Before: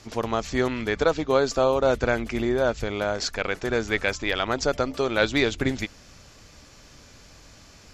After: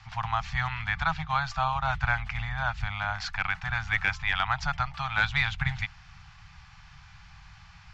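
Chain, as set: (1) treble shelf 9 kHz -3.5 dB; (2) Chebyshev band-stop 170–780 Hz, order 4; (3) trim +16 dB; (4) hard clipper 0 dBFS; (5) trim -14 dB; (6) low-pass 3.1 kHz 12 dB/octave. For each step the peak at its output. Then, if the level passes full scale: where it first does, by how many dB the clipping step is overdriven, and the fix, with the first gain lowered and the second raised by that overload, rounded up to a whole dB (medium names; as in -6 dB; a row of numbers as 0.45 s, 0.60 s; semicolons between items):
-6.0 dBFS, -8.0 dBFS, +8.0 dBFS, 0.0 dBFS, -14.0 dBFS, -13.5 dBFS; step 3, 8.0 dB; step 3 +8 dB, step 5 -6 dB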